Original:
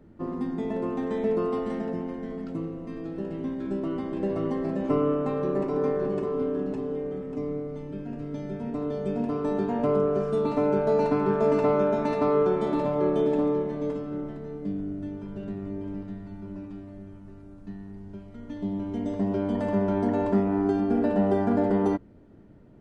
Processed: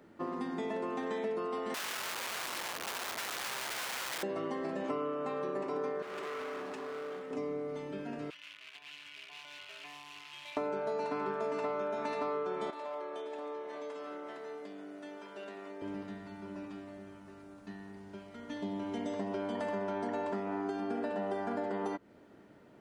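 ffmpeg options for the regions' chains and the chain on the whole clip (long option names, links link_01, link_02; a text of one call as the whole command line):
ffmpeg -i in.wav -filter_complex "[0:a]asettb=1/sr,asplit=3[link_01][link_02][link_03];[link_01]atrim=end=1.744[link_04];[link_02]atrim=start=1.74:end=4.23,asetpts=PTS-STARTPTS,afade=type=in:duration=0.004:curve=qsin,afade=type=out:start_time=2.486:duration=0.004:curve=qsin,aecho=1:1:4.7:0.77,atrim=end_sample=109809,acrossover=split=270|790[link_05][link_06][link_07];[link_05]acompressor=threshold=-41dB:ratio=4[link_08];[link_06]acompressor=threshold=-36dB:ratio=4[link_09];[link_07]acompressor=threshold=-46dB:ratio=4[link_10];[link_08][link_09][link_10]amix=inputs=3:normalize=0,aeval=exprs='(mod(53.1*val(0)+1,2)-1)/53.1':channel_layout=same[link_11];[link_03]atrim=start=4.226[link_12];[link_04][link_11]acrossfade=duration=0.004:curve1=hsin:curve2=qsin[link_13];[link_13][link_12]acrossfade=duration=0.004:curve1=qsin:curve2=hsin,asettb=1/sr,asplit=3[link_14][link_15][link_16];[link_14]atrim=end=6.024[link_17];[link_15]atrim=start=6.02:end=7.31,asetpts=PTS-STARTPTS,afade=type=in:duration=0.004:curve=qsin,afade=type=out:start_time=1.286:duration=0.004:curve=qsin,lowshelf=frequency=390:gain=-11,asoftclip=type=hard:threshold=-37dB[link_18];[link_16]atrim=start=7.306[link_19];[link_17][link_18]acrossfade=duration=0.004:curve1=hsin:curve2=qsin[link_20];[link_20][link_19]acrossfade=duration=0.004:curve1=qsin:curve2=hsin,asettb=1/sr,asplit=3[link_21][link_22][link_23];[link_21]atrim=end=8.304[link_24];[link_22]atrim=start=8.3:end=10.57,asetpts=PTS-STARTPTS,afade=type=in:duration=0.004:curve=qsin,afade=type=out:start_time=2.266:duration=0.004:curve=qsin,afreqshift=-300,acrusher=bits=8:dc=4:mix=0:aa=0.000001,bandpass=frequency=2700:width_type=q:width=3.3[link_25];[link_23]atrim=start=10.566[link_26];[link_24][link_25]acrossfade=duration=0.004:curve1=hsin:curve2=qsin[link_27];[link_27][link_26]acrossfade=duration=0.004:curve1=qsin:curve2=hsin,asettb=1/sr,asplit=3[link_28][link_29][link_30];[link_28]atrim=end=12.704[link_31];[link_29]atrim=start=12.7:end=15.82,asetpts=PTS-STARTPTS,afade=type=in:duration=0.004:curve=qsin,afade=type=out:start_time=3.116:duration=0.004:curve=qsin,highpass=470,acompressor=threshold=-38dB:ratio=6:attack=3.2:release=140:knee=1:detection=peak[link_32];[link_30]atrim=start=15.816[link_33];[link_31][link_32]acrossfade=duration=0.004:curve1=hsin:curve2=qsin[link_34];[link_34][link_33]acrossfade=duration=0.004:curve1=qsin:curve2=hsin,highpass=frequency=1100:poles=1,acompressor=threshold=-40dB:ratio=6,volume=7dB" out.wav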